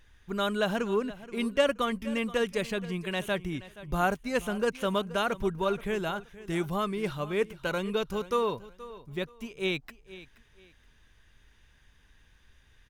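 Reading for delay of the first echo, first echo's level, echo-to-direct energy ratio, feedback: 476 ms, -17.0 dB, -16.5 dB, 26%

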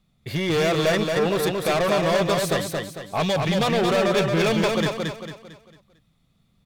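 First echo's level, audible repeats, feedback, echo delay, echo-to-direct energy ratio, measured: -3.5 dB, 4, 39%, 225 ms, -3.0 dB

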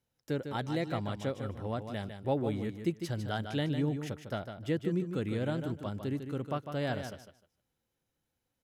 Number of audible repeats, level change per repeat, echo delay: 2, -14.0 dB, 152 ms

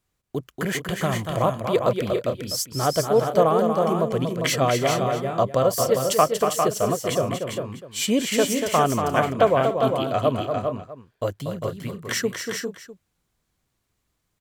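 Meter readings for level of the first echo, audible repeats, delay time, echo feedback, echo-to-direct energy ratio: -6.5 dB, 5, 237 ms, no regular repeats, -2.0 dB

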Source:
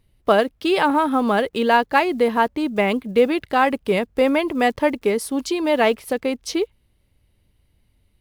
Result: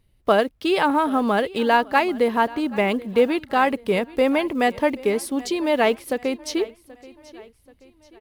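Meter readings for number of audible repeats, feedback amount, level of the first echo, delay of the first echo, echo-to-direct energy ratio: 3, 44%, -20.5 dB, 781 ms, -19.5 dB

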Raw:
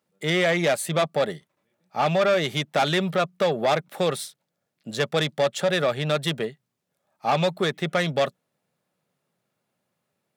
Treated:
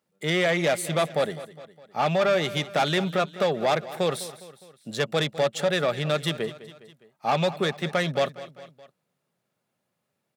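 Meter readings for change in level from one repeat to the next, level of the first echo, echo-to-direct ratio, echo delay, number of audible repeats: -5.5 dB, -16.0 dB, -14.5 dB, 205 ms, 3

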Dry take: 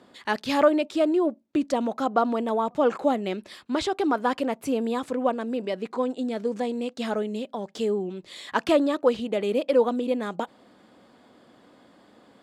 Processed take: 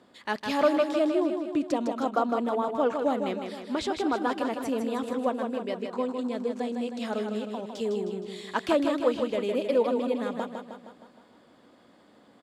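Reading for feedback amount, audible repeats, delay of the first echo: 55%, 6, 156 ms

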